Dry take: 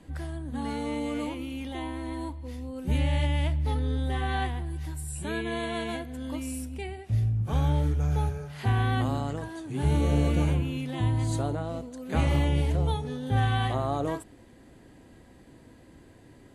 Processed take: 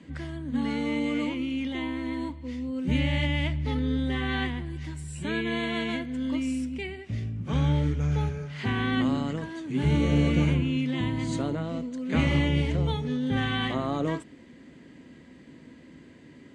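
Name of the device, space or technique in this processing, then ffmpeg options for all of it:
car door speaker: -af "highpass=83,equalizer=f=110:t=q:w=4:g=-8,equalizer=f=160:t=q:w=4:g=6,equalizer=f=250:t=q:w=4:g=7,equalizer=f=760:t=q:w=4:g=-8,equalizer=f=2100:t=q:w=4:g=7,equalizer=f=3000:t=q:w=4:g=4,lowpass=f=7400:w=0.5412,lowpass=f=7400:w=1.3066,volume=1.12"

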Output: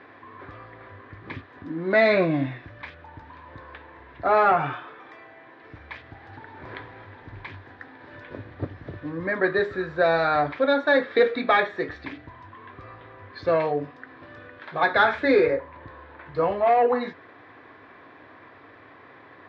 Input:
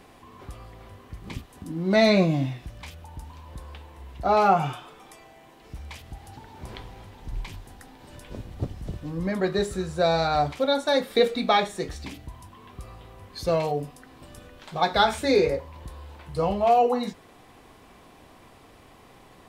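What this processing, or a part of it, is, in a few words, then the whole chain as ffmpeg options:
overdrive pedal into a guitar cabinet: -filter_complex "[0:a]asplit=2[s0][s1];[s1]highpass=f=720:p=1,volume=3.98,asoftclip=type=tanh:threshold=0.473[s2];[s0][s2]amix=inputs=2:normalize=0,lowpass=f=2400:p=1,volume=0.501,highpass=100,equalizer=f=100:t=q:w=4:g=9,equalizer=f=200:t=q:w=4:g=-8,equalizer=f=290:t=q:w=4:g=5,equalizer=f=790:t=q:w=4:g=-6,equalizer=f=1700:t=q:w=4:g=8,equalizer=f=2900:t=q:w=4:g=-9,lowpass=f=3500:w=0.5412,lowpass=f=3500:w=1.3066,asettb=1/sr,asplit=3[s3][s4][s5];[s3]atrim=end=15.544[s6];[s4]atrim=start=15.54:end=16.26,asetpts=PTS-STARTPTS,afade=t=in:d=0.004:c=qsin,afade=t=out:st=0.716:d=0.004:c=qsin,lowpass=f=3500:p=1[s7];[s5]atrim=start=16.256[s8];[s6][s7]acrossfade=d=0.004:c1=hsin:c2=qsin[s9];[s9][s8]acrossfade=d=0.004:c1=qsin:c2=hsin"

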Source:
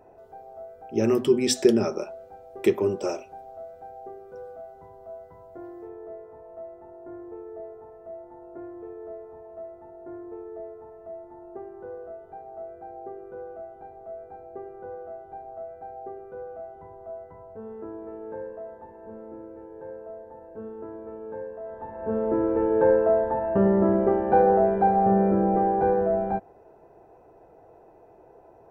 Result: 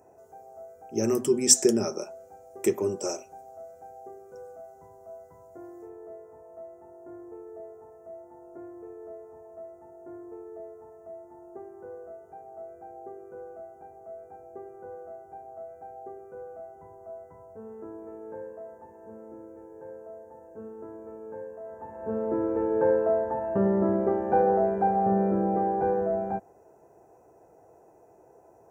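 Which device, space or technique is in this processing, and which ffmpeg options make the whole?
budget condenser microphone: -af "highpass=68,highshelf=f=5100:t=q:w=3:g=10,volume=0.668"

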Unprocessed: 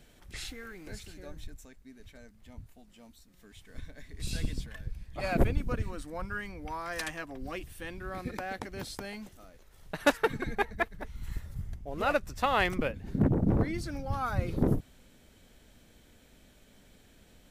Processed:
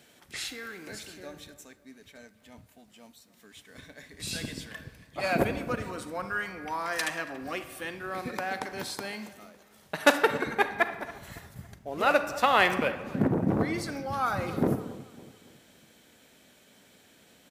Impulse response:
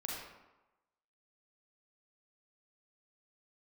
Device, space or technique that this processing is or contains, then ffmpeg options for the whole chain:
keyed gated reverb: -filter_complex "[0:a]highpass=140,lowshelf=f=420:g=-5.5,asplit=3[s0][s1][s2];[1:a]atrim=start_sample=2205[s3];[s1][s3]afir=irnorm=-1:irlink=0[s4];[s2]apad=whole_len=771968[s5];[s4][s5]sidechaingate=range=0.398:threshold=0.00178:ratio=16:detection=peak,volume=0.447[s6];[s0][s6]amix=inputs=2:normalize=0,asplit=2[s7][s8];[s8]adelay=279,lowpass=f=2000:p=1,volume=0.141,asplit=2[s9][s10];[s10]adelay=279,lowpass=f=2000:p=1,volume=0.45,asplit=2[s11][s12];[s12]adelay=279,lowpass=f=2000:p=1,volume=0.45,asplit=2[s13][s14];[s14]adelay=279,lowpass=f=2000:p=1,volume=0.45[s15];[s7][s9][s11][s13][s15]amix=inputs=5:normalize=0,volume=1.5"

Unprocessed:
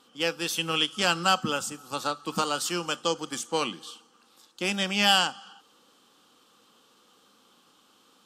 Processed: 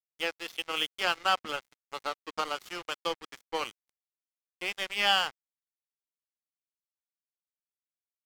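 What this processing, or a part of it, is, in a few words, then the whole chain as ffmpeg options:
pocket radio on a weak battery: -af "highpass=380,lowpass=3700,aeval=exprs='sgn(val(0))*max(abs(val(0))-0.0178,0)':c=same,equalizer=f=2100:t=o:w=0.22:g=5.5,volume=0.841"

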